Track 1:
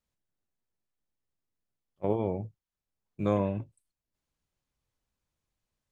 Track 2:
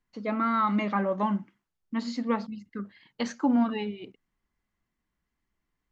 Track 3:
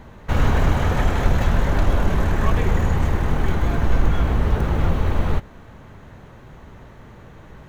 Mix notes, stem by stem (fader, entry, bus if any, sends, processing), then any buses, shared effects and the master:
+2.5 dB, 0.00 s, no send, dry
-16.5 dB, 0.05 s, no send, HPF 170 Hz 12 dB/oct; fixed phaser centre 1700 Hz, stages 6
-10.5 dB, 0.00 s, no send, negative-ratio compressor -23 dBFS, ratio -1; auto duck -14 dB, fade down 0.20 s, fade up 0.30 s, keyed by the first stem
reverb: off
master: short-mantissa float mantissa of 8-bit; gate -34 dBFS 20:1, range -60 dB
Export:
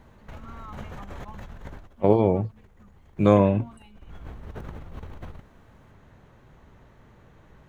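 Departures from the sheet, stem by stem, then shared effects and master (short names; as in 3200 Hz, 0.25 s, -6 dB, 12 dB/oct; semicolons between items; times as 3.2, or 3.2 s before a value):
stem 1 +2.5 dB -> +10.0 dB; stem 3 -10.5 dB -> -16.5 dB; master: missing gate -34 dBFS 20:1, range -60 dB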